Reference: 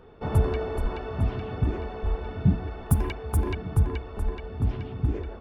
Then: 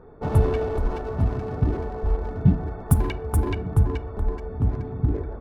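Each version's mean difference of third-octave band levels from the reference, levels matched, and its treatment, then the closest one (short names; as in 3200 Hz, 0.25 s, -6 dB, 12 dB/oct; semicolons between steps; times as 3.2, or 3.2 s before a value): 2.5 dB: Wiener smoothing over 15 samples; shoebox room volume 660 m³, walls furnished, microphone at 0.35 m; gain +3.5 dB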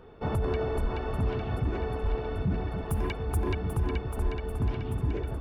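4.0 dB: limiter -20 dBFS, peak gain reduction 11.5 dB; on a send: split-band echo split 310 Hz, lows 0.283 s, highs 0.789 s, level -8 dB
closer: first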